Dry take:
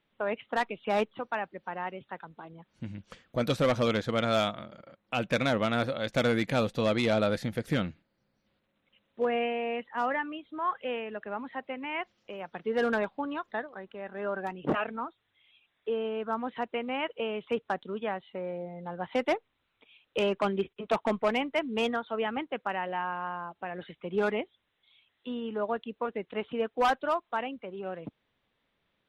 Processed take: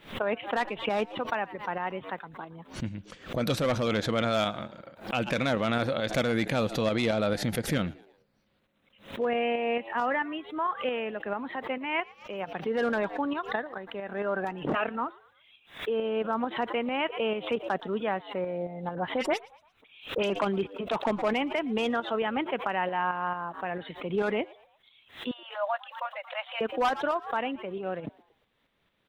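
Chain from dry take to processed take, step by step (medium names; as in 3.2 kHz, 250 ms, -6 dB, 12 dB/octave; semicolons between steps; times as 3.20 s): 25.31–26.61 s: brick-wall FIR high-pass 520 Hz; tremolo saw up 4.5 Hz, depth 50%; 18.95–20.30 s: phase dispersion highs, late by 61 ms, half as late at 2.6 kHz; in parallel at -2.5 dB: compressor with a negative ratio -33 dBFS, ratio -0.5; on the sum: frequency-shifting echo 115 ms, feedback 44%, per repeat +100 Hz, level -23 dB; swell ahead of each attack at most 150 dB/s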